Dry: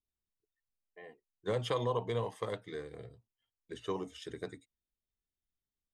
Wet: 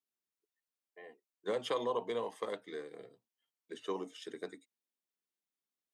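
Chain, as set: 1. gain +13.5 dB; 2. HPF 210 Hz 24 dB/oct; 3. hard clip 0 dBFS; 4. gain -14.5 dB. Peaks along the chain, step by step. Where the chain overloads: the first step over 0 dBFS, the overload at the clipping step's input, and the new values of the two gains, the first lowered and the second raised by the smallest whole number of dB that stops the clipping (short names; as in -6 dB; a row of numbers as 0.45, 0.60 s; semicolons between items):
-5.0, -5.5, -5.5, -20.0 dBFS; no overload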